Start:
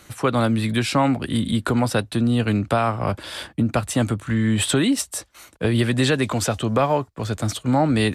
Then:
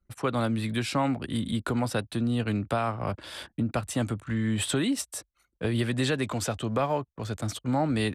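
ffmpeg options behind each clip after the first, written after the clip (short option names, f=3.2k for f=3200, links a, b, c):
-af "anlmdn=0.631,volume=-7.5dB"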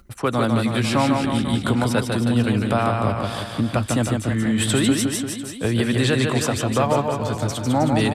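-af "acompressor=mode=upward:threshold=-47dB:ratio=2.5,aecho=1:1:150|315|496.5|696.2|915.8:0.631|0.398|0.251|0.158|0.1,volume=6dB"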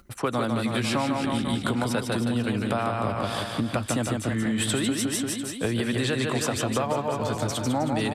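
-af "lowshelf=f=120:g=-7,acompressor=threshold=-22dB:ratio=6"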